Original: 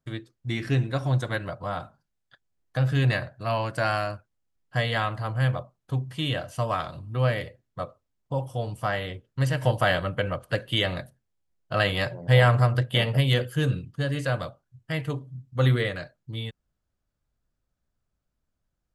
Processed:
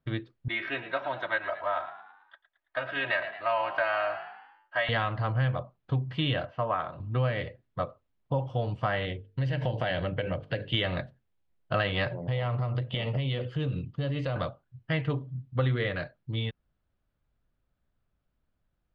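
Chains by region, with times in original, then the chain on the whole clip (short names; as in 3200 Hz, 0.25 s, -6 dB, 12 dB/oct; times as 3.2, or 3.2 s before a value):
0.48–4.89 three-band isolator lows -24 dB, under 550 Hz, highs -18 dB, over 3300 Hz + comb 3.2 ms, depth 88% + frequency-shifting echo 0.11 s, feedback 49%, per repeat +50 Hz, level -13.5 dB
6.45–7 LPF 1300 Hz + tilt +3 dB/oct
9.05–10.74 bell 1200 Hz -10 dB 0.62 oct + notches 50/100/150/200/250/300/350/400/450 Hz + compressor 3:1, threshold -28 dBFS
12.16–14.36 bell 1600 Hz -10.5 dB 0.31 oct + compressor 5:1, threshold -29 dBFS
whole clip: LPF 3700 Hz 24 dB/oct; compressor, threshold -26 dBFS; gain +2.5 dB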